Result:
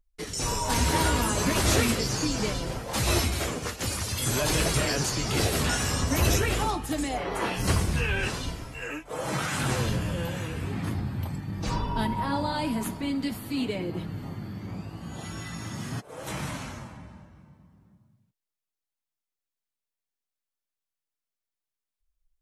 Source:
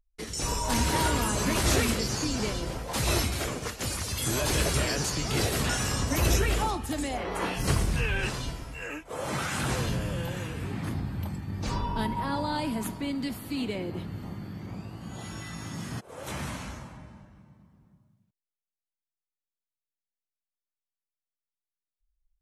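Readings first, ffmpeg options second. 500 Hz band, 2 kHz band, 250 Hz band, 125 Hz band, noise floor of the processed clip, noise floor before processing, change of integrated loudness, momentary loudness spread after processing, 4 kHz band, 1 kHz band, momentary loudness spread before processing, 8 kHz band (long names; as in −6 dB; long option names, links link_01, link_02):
+1.5 dB, +1.5 dB, +2.0 dB, +1.5 dB, below −85 dBFS, below −85 dBFS, +1.5 dB, 13 LU, +1.5 dB, +1.5 dB, 13 LU, +1.5 dB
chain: -af "flanger=delay=6.2:depth=6.2:regen=-39:speed=0.43:shape=sinusoidal,volume=5.5dB"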